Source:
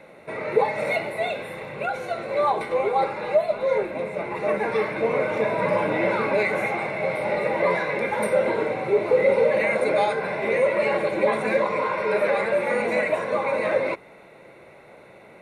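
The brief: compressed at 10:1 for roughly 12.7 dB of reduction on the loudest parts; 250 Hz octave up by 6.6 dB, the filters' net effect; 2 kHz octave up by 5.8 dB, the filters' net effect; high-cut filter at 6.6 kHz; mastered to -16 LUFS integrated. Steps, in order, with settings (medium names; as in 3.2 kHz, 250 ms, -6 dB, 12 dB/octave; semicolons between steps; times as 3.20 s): low-pass 6.6 kHz; peaking EQ 250 Hz +9 dB; peaking EQ 2 kHz +6.5 dB; compression 10:1, threshold -25 dBFS; trim +12.5 dB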